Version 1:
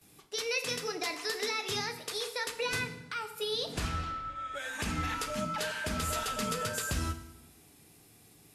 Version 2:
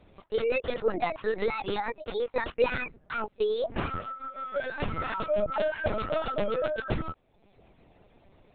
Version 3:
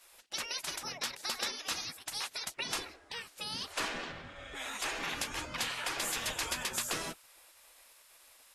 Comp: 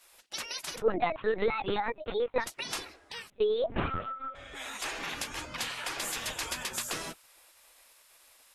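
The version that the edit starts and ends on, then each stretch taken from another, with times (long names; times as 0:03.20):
3
0:00.78–0:02.44: punch in from 2, crossfade 0.10 s
0:03.30–0:04.35: punch in from 2
not used: 1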